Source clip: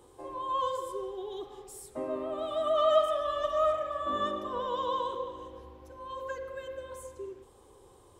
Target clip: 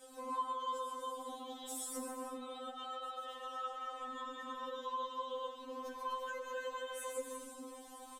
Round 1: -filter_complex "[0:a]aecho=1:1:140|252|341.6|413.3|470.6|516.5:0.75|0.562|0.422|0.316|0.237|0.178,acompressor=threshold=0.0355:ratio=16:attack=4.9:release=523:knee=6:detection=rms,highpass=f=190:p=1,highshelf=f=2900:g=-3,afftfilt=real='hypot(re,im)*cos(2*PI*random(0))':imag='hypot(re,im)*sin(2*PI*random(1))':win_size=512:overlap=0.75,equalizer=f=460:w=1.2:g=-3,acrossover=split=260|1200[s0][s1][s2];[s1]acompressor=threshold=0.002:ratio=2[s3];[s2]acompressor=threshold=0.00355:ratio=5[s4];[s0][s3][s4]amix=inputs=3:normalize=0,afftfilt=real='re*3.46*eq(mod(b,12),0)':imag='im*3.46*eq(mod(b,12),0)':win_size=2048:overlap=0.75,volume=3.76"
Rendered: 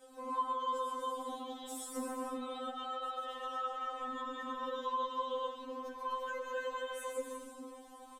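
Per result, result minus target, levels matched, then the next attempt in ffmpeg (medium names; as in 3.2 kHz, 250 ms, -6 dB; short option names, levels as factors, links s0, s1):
compression: peak gain reduction -7.5 dB; 8 kHz band -6.0 dB
-filter_complex "[0:a]aecho=1:1:140|252|341.6|413.3|470.6|516.5:0.75|0.562|0.422|0.316|0.237|0.178,acompressor=threshold=0.0141:ratio=16:attack=4.9:release=523:knee=6:detection=rms,highpass=f=190:p=1,highshelf=f=2900:g=-3,afftfilt=real='hypot(re,im)*cos(2*PI*random(0))':imag='hypot(re,im)*sin(2*PI*random(1))':win_size=512:overlap=0.75,equalizer=f=460:w=1.2:g=-3,acrossover=split=260|1200[s0][s1][s2];[s1]acompressor=threshold=0.002:ratio=2[s3];[s2]acompressor=threshold=0.00355:ratio=5[s4];[s0][s3][s4]amix=inputs=3:normalize=0,afftfilt=real='re*3.46*eq(mod(b,12),0)':imag='im*3.46*eq(mod(b,12),0)':win_size=2048:overlap=0.75,volume=3.76"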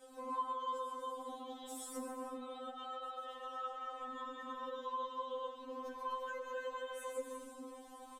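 8 kHz band -5.0 dB
-filter_complex "[0:a]aecho=1:1:140|252|341.6|413.3|470.6|516.5:0.75|0.562|0.422|0.316|0.237|0.178,acompressor=threshold=0.0141:ratio=16:attack=4.9:release=523:knee=6:detection=rms,highpass=f=190:p=1,highshelf=f=2900:g=4.5,afftfilt=real='hypot(re,im)*cos(2*PI*random(0))':imag='hypot(re,im)*sin(2*PI*random(1))':win_size=512:overlap=0.75,equalizer=f=460:w=1.2:g=-3,acrossover=split=260|1200[s0][s1][s2];[s1]acompressor=threshold=0.002:ratio=2[s3];[s2]acompressor=threshold=0.00355:ratio=5[s4];[s0][s3][s4]amix=inputs=3:normalize=0,afftfilt=real='re*3.46*eq(mod(b,12),0)':imag='im*3.46*eq(mod(b,12),0)':win_size=2048:overlap=0.75,volume=3.76"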